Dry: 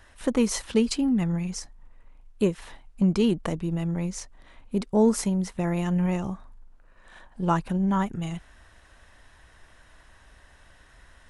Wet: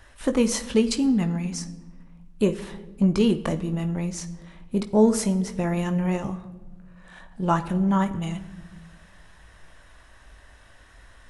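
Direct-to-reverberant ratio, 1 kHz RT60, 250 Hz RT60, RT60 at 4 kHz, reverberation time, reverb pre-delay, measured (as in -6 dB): 7.5 dB, 1.1 s, 1.9 s, 0.80 s, 1.3 s, 19 ms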